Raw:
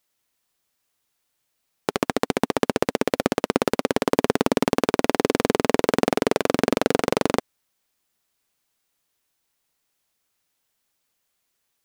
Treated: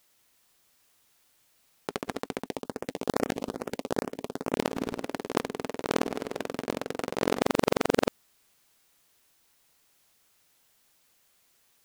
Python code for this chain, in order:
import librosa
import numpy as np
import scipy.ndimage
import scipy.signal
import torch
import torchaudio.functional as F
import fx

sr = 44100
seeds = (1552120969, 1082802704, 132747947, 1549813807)

y = fx.reverse_delay(x, sr, ms=675, wet_db=-12)
y = fx.over_compress(y, sr, threshold_db=-31.0, ratio=-1.0)
y = fx.filter_lfo_notch(y, sr, shape='saw_up', hz=2.4, low_hz=1000.0, high_hz=4800.0, q=1.4, at=(2.46, 4.61))